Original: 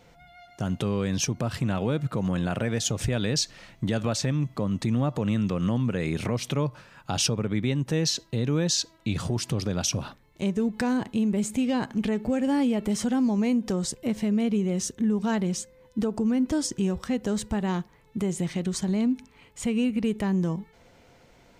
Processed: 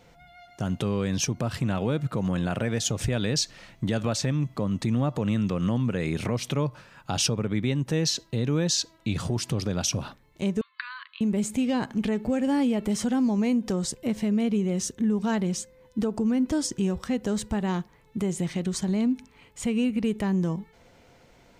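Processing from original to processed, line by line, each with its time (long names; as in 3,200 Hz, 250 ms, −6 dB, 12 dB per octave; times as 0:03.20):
0:10.61–0:11.21: linear-phase brick-wall band-pass 1,000–4,700 Hz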